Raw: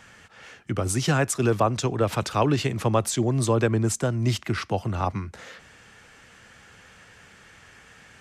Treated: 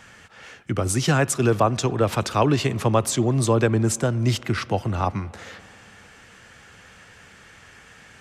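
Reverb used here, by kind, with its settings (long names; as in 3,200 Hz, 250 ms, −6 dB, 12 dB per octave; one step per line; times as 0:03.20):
spring reverb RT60 3.6 s, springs 58 ms, chirp 70 ms, DRR 20 dB
level +2.5 dB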